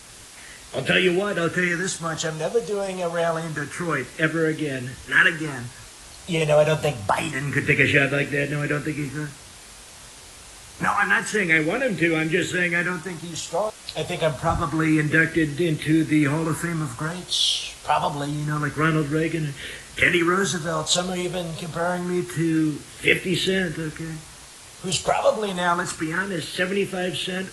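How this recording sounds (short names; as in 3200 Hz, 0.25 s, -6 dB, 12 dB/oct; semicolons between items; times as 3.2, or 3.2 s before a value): phasing stages 4, 0.27 Hz, lowest notch 290–1000 Hz; a quantiser's noise floor 8-bit, dither triangular; AAC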